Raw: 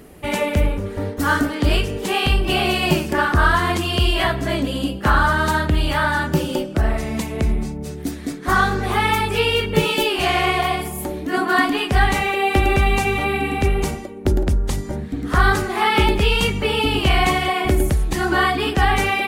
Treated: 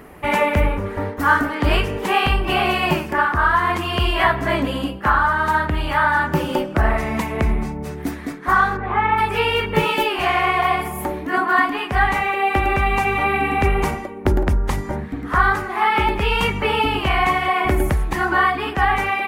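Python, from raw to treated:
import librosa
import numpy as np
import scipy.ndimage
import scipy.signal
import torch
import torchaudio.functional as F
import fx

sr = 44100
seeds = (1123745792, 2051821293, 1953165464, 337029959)

y = fx.air_absorb(x, sr, metres=440.0, at=(8.76, 9.17), fade=0.02)
y = fx.graphic_eq_10(y, sr, hz=(1000, 2000, 4000, 8000), db=(9, 6, -4, -5))
y = fx.rider(y, sr, range_db=4, speed_s=0.5)
y = F.gain(torch.from_numpy(y), -4.0).numpy()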